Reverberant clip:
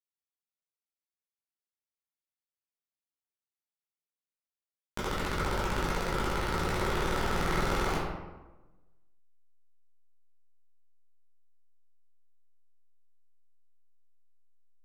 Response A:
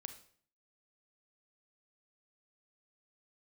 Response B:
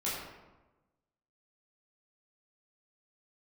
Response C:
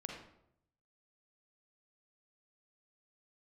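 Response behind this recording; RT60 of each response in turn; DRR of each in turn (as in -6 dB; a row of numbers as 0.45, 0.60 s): B; 0.55, 1.1, 0.75 s; 8.5, -9.0, 0.5 dB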